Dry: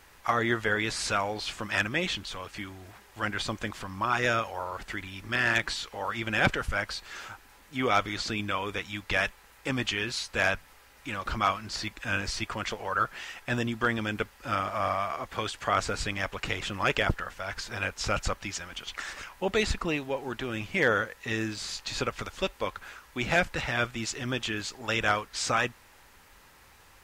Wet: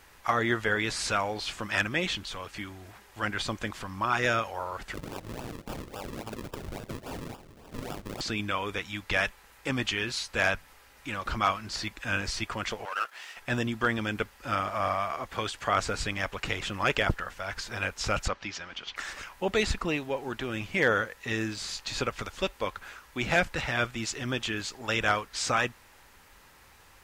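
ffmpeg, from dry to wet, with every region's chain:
-filter_complex "[0:a]asettb=1/sr,asplit=3[a][b][c];[a]atrim=end=4.944[d];[b]atrim=start=4.94:end=8.21,asetpts=PTS-STARTPTS,afade=t=in:d=0.004:c=qsin,afade=t=out:st=3.266:d=0.004:c=qsin,highshelf=f=1.8k:t=q:w=1.5:g=8,acompressor=threshold=-33dB:ratio=12:attack=3.2:release=140:knee=1:detection=peak,acrusher=samples=41:mix=1:aa=0.000001:lfo=1:lforange=41:lforate=3.6[e];[c]atrim=start=8.206[f];[d][e]acrossfade=d=0.004:c1=hsin:c2=qsin[g];[g][f]acrossfade=d=0.004:c1=qsin:c2=hsin,asettb=1/sr,asplit=3[h][i][j];[h]atrim=end=12.854[k];[i]atrim=start=12.85:end=13.37,asetpts=PTS-STARTPTS,afade=t=in:d=0.004:c=qsin,afade=t=out:st=0.516:d=0.004:c=qsin,aeval=exprs='if(lt(val(0),0),0.251*val(0),val(0))':c=same,highpass=600[l];[j]atrim=start=13.366[m];[k][l]acrossfade=d=0.004:c1=hsin:c2=qsin[n];[n][m]acrossfade=d=0.004:c1=qsin:c2=hsin,asettb=1/sr,asplit=3[o][p][q];[o]atrim=end=18.284[r];[p]atrim=start=18.28:end=18.96,asetpts=PTS-STARTPTS,afade=t=in:d=0.004:c=qsin,afade=t=out:st=0.676:d=0.004:c=qsin,lowpass=f=5.5k:w=0.5412,lowpass=f=5.5k:w=1.3066,lowshelf=f=96:g=-11.5[s];[q]atrim=start=18.956[t];[r][s]acrossfade=d=0.004:c1=hsin:c2=qsin[u];[u][t]acrossfade=d=0.004:c1=qsin:c2=hsin"

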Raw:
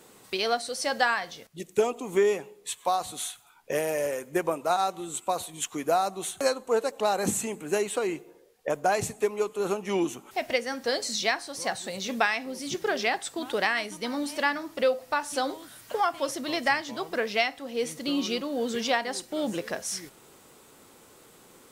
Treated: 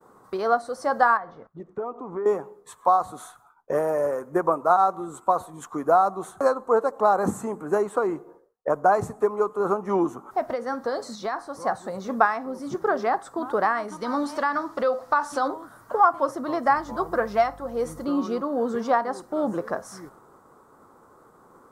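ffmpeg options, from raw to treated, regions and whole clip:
-filter_complex "[0:a]asettb=1/sr,asplit=3[a][b][c];[a]atrim=end=1.174[d];[b]atrim=start=1.17:end=2.26,asetpts=PTS-STARTPTS,afade=t=in:d=0.004:c=qsin,afade=t=out:st=1.086:d=0.004:c=qsin,lowpass=2.4k,acompressor=threshold=-40dB:ratio=2:attack=3.2:release=140:knee=1:detection=peak[e];[c]atrim=start=2.256[f];[d][e]acrossfade=d=0.004:c1=hsin:c2=qsin[g];[g][f]acrossfade=d=0.004:c1=qsin:c2=hsin,asettb=1/sr,asplit=3[h][i][j];[h]atrim=end=10.474[k];[i]atrim=start=10.47:end=11.37,asetpts=PTS-STARTPTS,afade=t=in:d=0.004:c=qsin,afade=t=out:st=0.896:d=0.004:c=qsin,equalizer=f=3.9k:t=o:w=0.56:g=5.5,acompressor=threshold=-25dB:ratio=4:attack=3.2:release=140:knee=1:detection=peak[l];[j]atrim=start=11.366[m];[k][l]acrossfade=d=0.004:c1=hsin:c2=qsin[n];[n][m]acrossfade=d=0.004:c1=qsin:c2=hsin,asettb=1/sr,asplit=3[o][p][q];[o]atrim=end=13.884[r];[p]atrim=start=13.88:end=15.48,asetpts=PTS-STARTPTS,afade=t=in:d=0.004:c=qsin,afade=t=out:st=1.596:d=0.004:c=qsin,equalizer=f=4.1k:t=o:w=2.3:g=11,acompressor=threshold=-23dB:ratio=3:attack=3.2:release=140:knee=1:detection=peak[s];[q]atrim=start=15.476[t];[r][s]acrossfade=d=0.004:c1=hsin:c2=qsin[u];[u][t]acrossfade=d=0.004:c1=qsin:c2=hsin,asettb=1/sr,asplit=3[v][w][x];[v]atrim=end=16.764[y];[w]atrim=start=16.76:end=18.05,asetpts=PTS-STARTPTS,afade=t=in:d=0.004:c=qsin,afade=t=out:st=1.286:d=0.004:c=qsin,highshelf=f=6k:g=7.5,aecho=1:1:5.7:0.41,atrim=end_sample=56889,aeval=exprs='val(0)+0.00355*(sin(2*PI*50*n/s)+sin(2*PI*2*50*n/s)/2+sin(2*PI*3*50*n/s)/3+sin(2*PI*4*50*n/s)/4+sin(2*PI*5*50*n/s)/5)':c=same[z];[x]atrim=start=18.046[aa];[y][z]acrossfade=d=0.004:c1=hsin:c2=qsin[ab];[ab][aa]acrossfade=d=0.004:c1=qsin:c2=hsin,agate=range=-33dB:threshold=-50dB:ratio=3:detection=peak,highshelf=f=1.8k:t=q:w=3:g=-14,volume=3dB"

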